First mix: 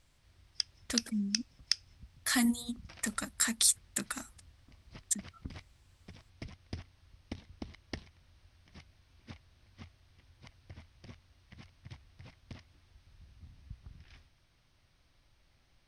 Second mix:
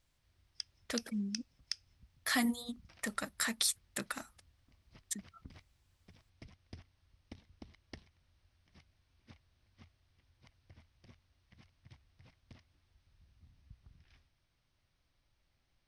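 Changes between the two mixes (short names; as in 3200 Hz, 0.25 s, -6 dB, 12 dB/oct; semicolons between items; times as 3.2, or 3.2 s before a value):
speech: add graphic EQ 250/500/8000 Hz -5/+5/-9 dB; background -9.0 dB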